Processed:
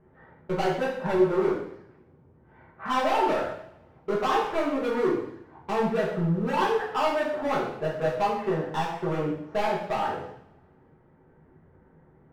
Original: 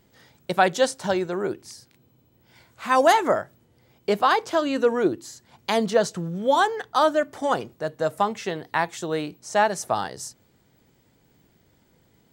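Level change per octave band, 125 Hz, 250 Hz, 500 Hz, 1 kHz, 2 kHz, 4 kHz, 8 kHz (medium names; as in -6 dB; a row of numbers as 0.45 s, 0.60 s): +3.5 dB, -0.5 dB, -3.0 dB, -4.5 dB, -5.5 dB, -7.0 dB, under -10 dB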